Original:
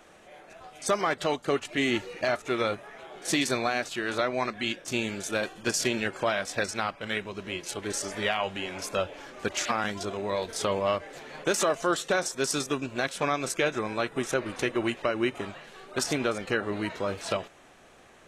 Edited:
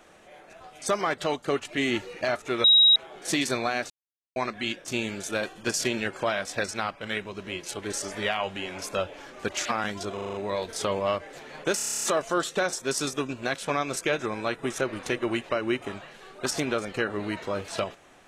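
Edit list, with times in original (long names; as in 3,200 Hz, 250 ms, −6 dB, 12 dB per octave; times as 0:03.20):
0:02.64–0:02.96: beep over 3,820 Hz −13.5 dBFS
0:03.90–0:04.36: silence
0:10.14: stutter 0.04 s, 6 plays
0:11.56: stutter 0.03 s, 10 plays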